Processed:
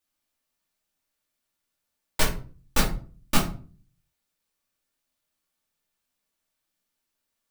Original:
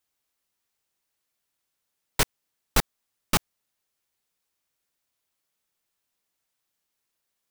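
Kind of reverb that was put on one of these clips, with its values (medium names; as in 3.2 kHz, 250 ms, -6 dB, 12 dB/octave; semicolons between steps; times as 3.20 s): simulated room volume 270 m³, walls furnished, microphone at 2.5 m; trim -4.5 dB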